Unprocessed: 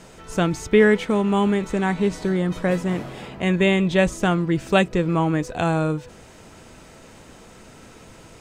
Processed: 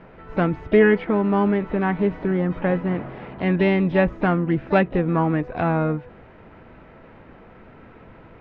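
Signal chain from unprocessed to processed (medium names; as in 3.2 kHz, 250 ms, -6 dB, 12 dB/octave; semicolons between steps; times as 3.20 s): low-pass 2.2 kHz 24 dB/octave; harmony voices +7 st -15 dB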